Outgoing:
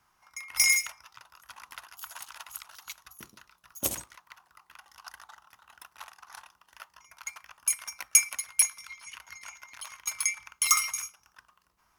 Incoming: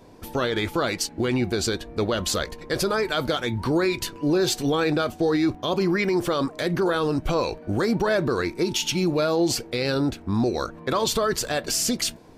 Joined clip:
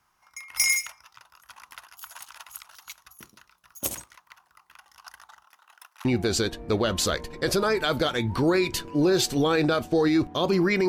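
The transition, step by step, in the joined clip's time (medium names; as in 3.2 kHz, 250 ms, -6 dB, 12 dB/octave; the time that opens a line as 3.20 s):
outgoing
5.43–6.05 s: high-pass 260 Hz -> 860 Hz
6.05 s: go over to incoming from 1.33 s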